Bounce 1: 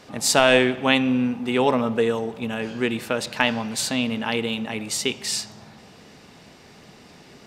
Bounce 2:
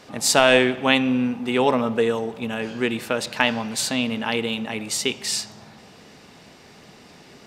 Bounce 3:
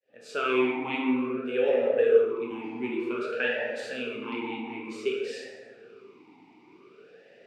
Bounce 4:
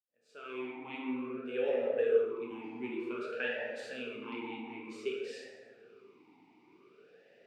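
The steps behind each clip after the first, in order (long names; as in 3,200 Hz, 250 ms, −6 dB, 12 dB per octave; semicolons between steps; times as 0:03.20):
low-shelf EQ 180 Hz −3 dB; level +1 dB
fade in at the beginning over 0.53 s; dense smooth reverb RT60 2.1 s, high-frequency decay 0.35×, DRR −4 dB; formant filter swept between two vowels e-u 0.54 Hz
fade in at the beginning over 1.62 s; level −7.5 dB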